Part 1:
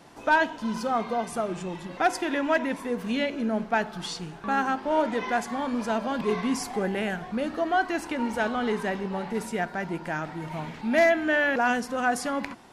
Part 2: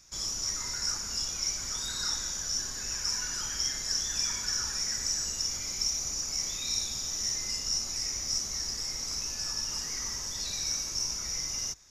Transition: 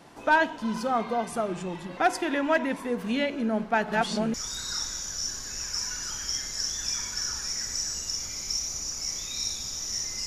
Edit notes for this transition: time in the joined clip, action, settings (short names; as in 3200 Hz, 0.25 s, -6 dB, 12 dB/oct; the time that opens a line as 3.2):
part 1
3.28–4.34 reverse delay 0.596 s, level -1 dB
4.34 switch to part 2 from 1.65 s